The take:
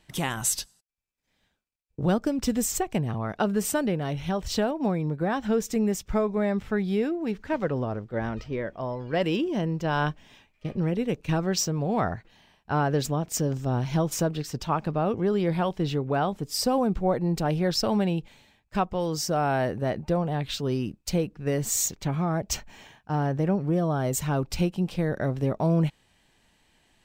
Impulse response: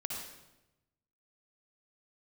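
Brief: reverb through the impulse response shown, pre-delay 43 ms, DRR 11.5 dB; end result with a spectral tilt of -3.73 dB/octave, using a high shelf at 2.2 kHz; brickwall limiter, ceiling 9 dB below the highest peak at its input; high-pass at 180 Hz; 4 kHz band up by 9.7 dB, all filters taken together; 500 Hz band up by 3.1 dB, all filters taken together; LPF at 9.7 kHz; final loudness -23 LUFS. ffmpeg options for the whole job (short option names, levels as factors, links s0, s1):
-filter_complex "[0:a]highpass=180,lowpass=9700,equalizer=f=500:t=o:g=3.5,highshelf=f=2200:g=6.5,equalizer=f=4000:t=o:g=6.5,alimiter=limit=0.2:level=0:latency=1,asplit=2[s0][s1];[1:a]atrim=start_sample=2205,adelay=43[s2];[s1][s2]afir=irnorm=-1:irlink=0,volume=0.224[s3];[s0][s3]amix=inputs=2:normalize=0,volume=1.33"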